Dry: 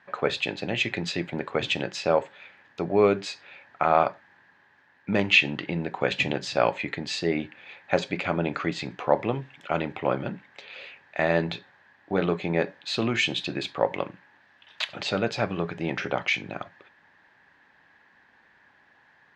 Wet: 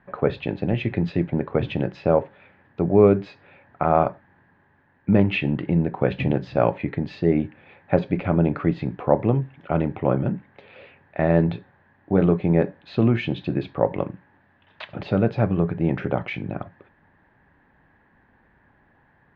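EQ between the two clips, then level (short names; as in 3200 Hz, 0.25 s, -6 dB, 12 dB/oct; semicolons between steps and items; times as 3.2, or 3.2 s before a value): Gaussian blur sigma 2 samples; tilt -4 dB/oct; 0.0 dB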